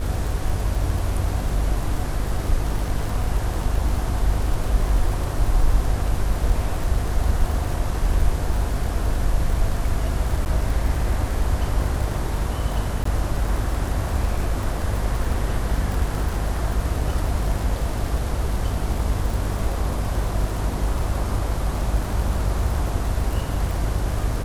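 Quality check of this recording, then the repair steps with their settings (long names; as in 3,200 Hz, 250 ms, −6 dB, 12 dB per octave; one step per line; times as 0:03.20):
mains buzz 50 Hz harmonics 33 −26 dBFS
surface crackle 43 per second −26 dBFS
0:10.45–0:10.46: drop-out 9.3 ms
0:13.04–0:13.05: drop-out 14 ms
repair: click removal
hum removal 50 Hz, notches 33
repair the gap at 0:10.45, 9.3 ms
repair the gap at 0:13.04, 14 ms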